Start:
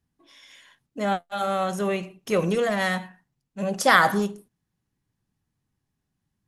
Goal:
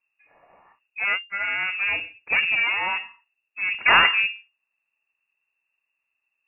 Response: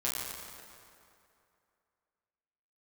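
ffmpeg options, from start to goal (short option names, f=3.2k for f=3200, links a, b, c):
-af "aeval=exprs='0.668*(cos(1*acos(clip(val(0)/0.668,-1,1)))-cos(1*PI/2))+0.237*(cos(4*acos(clip(val(0)/0.668,-1,1)))-cos(4*PI/2))':c=same,lowpass=f=2.4k:t=q:w=0.5098,lowpass=f=2.4k:t=q:w=0.6013,lowpass=f=2.4k:t=q:w=0.9,lowpass=f=2.4k:t=q:w=2.563,afreqshift=-2800"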